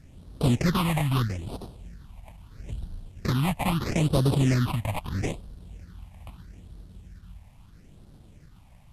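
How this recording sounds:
aliases and images of a low sample rate 1,600 Hz, jitter 20%
phaser sweep stages 6, 0.77 Hz, lowest notch 370–2,100 Hz
a quantiser's noise floor 12 bits, dither none
MP2

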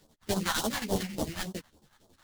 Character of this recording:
aliases and images of a low sample rate 2,500 Hz, jitter 20%
phaser sweep stages 2, 3.5 Hz, lowest notch 370–1,900 Hz
chopped level 11 Hz, depth 60%, duty 60%
a shimmering, thickened sound

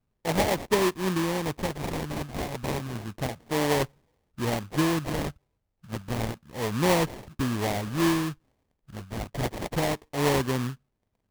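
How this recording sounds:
phaser sweep stages 2, 0.31 Hz, lowest notch 390–3,900 Hz
aliases and images of a low sample rate 1,400 Hz, jitter 20%

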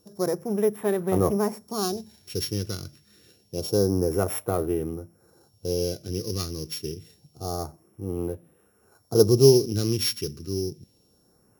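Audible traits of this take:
a buzz of ramps at a fixed pitch in blocks of 8 samples
phaser sweep stages 2, 0.27 Hz, lowest notch 720–4,800 Hz

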